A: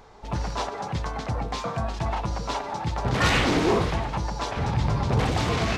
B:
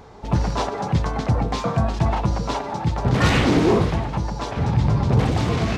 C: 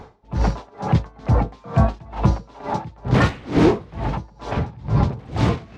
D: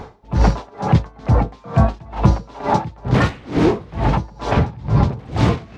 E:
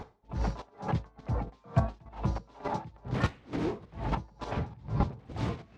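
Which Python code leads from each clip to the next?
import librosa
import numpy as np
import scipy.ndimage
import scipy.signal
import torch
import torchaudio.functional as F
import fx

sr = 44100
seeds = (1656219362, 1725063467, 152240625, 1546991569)

y1 = fx.highpass(x, sr, hz=110.0, slope=6)
y1 = fx.low_shelf(y1, sr, hz=370.0, db=11.0)
y1 = fx.rider(y1, sr, range_db=3, speed_s=2.0)
y2 = fx.high_shelf(y1, sr, hz=5200.0, db=-9.0)
y2 = y2 * 10.0 ** (-28 * (0.5 - 0.5 * np.cos(2.0 * np.pi * 2.2 * np.arange(len(y2)) / sr)) / 20.0)
y2 = y2 * librosa.db_to_amplitude(5.5)
y3 = fx.rider(y2, sr, range_db=5, speed_s=0.5)
y3 = y3 * librosa.db_to_amplitude(3.0)
y4 = fx.chopper(y3, sr, hz=3.4, depth_pct=60, duty_pct=10)
y4 = y4 * librosa.db_to_amplitude(-9.0)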